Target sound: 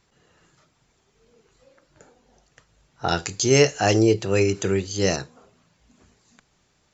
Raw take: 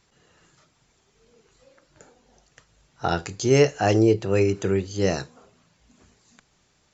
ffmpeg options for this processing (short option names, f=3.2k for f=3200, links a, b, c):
-af "asetnsamples=n=441:p=0,asendcmd='3.08 highshelf g 9.5;5.16 highshelf g -2',highshelf=f=2.6k:g=-3"